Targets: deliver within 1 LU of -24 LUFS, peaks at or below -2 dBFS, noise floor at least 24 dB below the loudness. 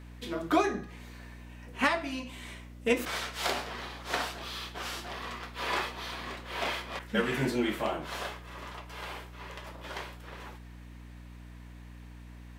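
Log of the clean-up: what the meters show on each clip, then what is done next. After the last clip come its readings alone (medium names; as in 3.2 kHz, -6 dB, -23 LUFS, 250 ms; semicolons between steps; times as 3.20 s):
hum 60 Hz; highest harmonic 300 Hz; hum level -45 dBFS; loudness -33.5 LUFS; peak level -12.5 dBFS; loudness target -24.0 LUFS
-> de-hum 60 Hz, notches 5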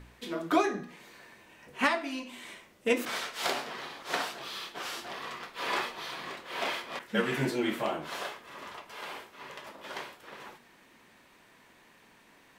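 hum not found; loudness -33.5 LUFS; peak level -12.0 dBFS; loudness target -24.0 LUFS
-> trim +9.5 dB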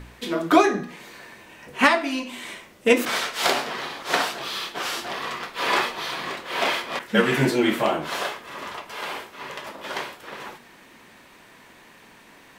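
loudness -24.0 LUFS; peak level -2.5 dBFS; noise floor -51 dBFS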